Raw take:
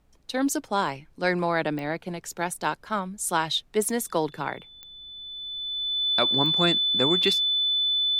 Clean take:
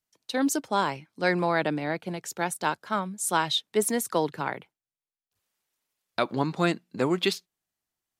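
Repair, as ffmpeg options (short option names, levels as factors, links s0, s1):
-af "adeclick=t=4,bandreject=f=3500:w=30,agate=range=0.0891:threshold=0.00631"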